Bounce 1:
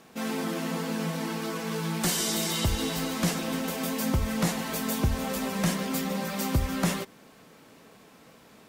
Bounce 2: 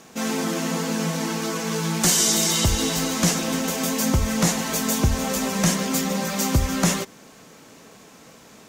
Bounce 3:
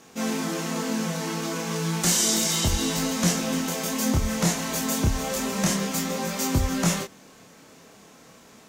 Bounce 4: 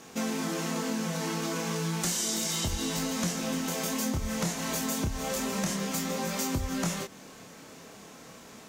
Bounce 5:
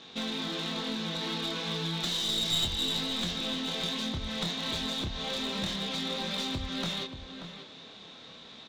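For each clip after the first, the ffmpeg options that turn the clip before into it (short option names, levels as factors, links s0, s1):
-af "equalizer=f=6500:w=2:g=8.5,volume=1.88"
-af "flanger=delay=22.5:depth=7.8:speed=0.31"
-af "acompressor=threshold=0.0282:ratio=4,volume=1.26"
-filter_complex "[0:a]lowpass=f=3700:t=q:w=9.6,aeval=exprs='clip(val(0),-1,0.0562)':c=same,asplit=2[s0][s1];[s1]adelay=583.1,volume=0.355,highshelf=f=4000:g=-13.1[s2];[s0][s2]amix=inputs=2:normalize=0,volume=0.596"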